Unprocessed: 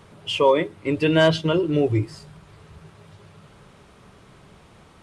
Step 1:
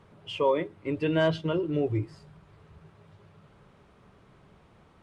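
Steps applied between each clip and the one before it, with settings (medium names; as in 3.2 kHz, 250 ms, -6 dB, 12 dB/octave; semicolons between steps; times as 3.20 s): treble shelf 3.9 kHz -11.5 dB; trim -7 dB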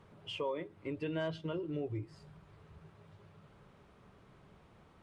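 compression 2:1, threshold -37 dBFS, peak gain reduction 10 dB; trim -3.5 dB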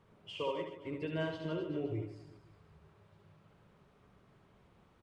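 reverse bouncing-ball echo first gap 70 ms, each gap 1.2×, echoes 5; upward expansion 1.5:1, over -45 dBFS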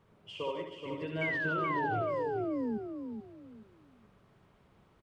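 painted sound fall, 1.21–2.78 s, 210–2300 Hz -34 dBFS; feedback delay 428 ms, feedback 27%, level -6.5 dB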